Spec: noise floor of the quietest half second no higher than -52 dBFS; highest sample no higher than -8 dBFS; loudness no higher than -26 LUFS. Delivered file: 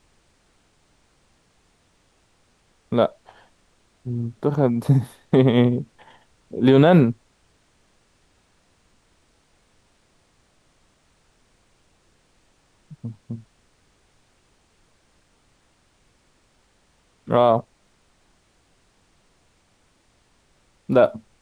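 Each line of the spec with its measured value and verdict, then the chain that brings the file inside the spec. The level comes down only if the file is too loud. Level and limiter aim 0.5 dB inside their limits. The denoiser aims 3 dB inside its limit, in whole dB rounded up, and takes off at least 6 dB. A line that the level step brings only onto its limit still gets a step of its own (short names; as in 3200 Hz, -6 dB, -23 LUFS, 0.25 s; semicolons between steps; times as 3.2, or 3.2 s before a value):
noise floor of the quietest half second -62 dBFS: OK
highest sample -4.5 dBFS: fail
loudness -19.5 LUFS: fail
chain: gain -7 dB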